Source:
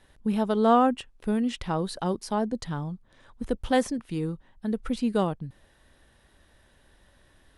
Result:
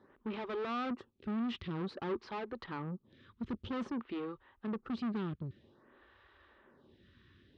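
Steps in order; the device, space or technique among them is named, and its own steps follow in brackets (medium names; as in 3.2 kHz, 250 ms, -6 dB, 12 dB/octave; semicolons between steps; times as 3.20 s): vibe pedal into a guitar amplifier (lamp-driven phase shifter 0.52 Hz; valve stage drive 39 dB, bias 0.4; cabinet simulation 77–3900 Hz, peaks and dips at 95 Hz +5 dB, 230 Hz +5 dB, 370 Hz +8 dB, 690 Hz -6 dB, 1.2 kHz +7 dB); trim +1.5 dB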